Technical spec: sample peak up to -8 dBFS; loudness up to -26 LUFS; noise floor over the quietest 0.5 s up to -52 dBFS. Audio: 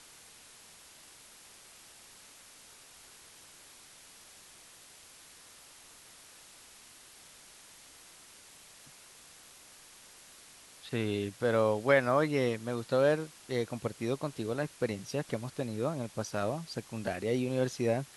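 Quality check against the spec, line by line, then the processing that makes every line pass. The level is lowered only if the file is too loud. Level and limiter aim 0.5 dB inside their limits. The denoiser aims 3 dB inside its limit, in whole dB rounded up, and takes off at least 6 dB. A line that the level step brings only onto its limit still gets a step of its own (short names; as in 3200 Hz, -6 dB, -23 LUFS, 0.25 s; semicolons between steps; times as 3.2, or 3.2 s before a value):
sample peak -11.5 dBFS: OK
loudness -32.0 LUFS: OK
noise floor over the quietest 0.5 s -55 dBFS: OK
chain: none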